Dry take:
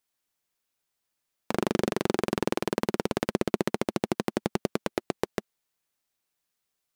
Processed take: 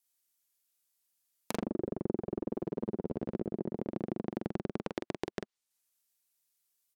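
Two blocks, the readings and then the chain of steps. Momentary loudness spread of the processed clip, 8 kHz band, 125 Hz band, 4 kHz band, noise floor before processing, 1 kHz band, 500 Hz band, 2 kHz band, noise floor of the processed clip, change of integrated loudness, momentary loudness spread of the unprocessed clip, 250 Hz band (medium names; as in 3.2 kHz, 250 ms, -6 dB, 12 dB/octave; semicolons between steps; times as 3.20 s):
4 LU, -13.0 dB, -6.0 dB, -14.5 dB, -82 dBFS, -12.5 dB, -8.0 dB, -14.0 dB, under -85 dBFS, -8.0 dB, 5 LU, -6.0 dB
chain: waveshaping leveller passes 1; low-pass that closes with the level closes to 490 Hz, closed at -23 dBFS; pre-emphasis filter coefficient 0.8; in parallel at 0 dB: level held to a coarse grid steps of 11 dB; on the sum: doubling 45 ms -5 dB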